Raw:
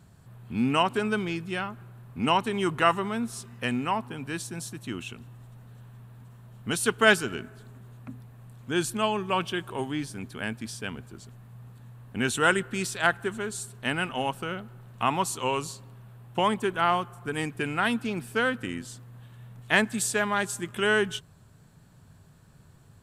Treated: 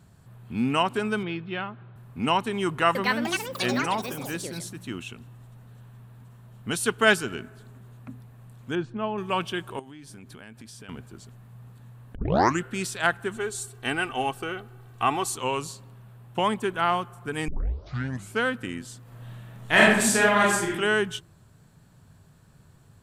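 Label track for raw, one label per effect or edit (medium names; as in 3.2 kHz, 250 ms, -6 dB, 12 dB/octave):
1.230000	1.960000	elliptic band-pass 110–3700 Hz
2.650000	5.690000	ever faster or slower copies 300 ms, each echo +7 st, echoes 3
8.750000	9.180000	tape spacing loss at 10 kHz 43 dB
9.790000	10.890000	compression 20:1, threshold -40 dBFS
12.150000	12.150000	tape start 0.48 s
13.360000	15.360000	comb 2.6 ms
17.480000	17.480000	tape start 0.90 s
19.010000	20.700000	reverb throw, RT60 0.88 s, DRR -6 dB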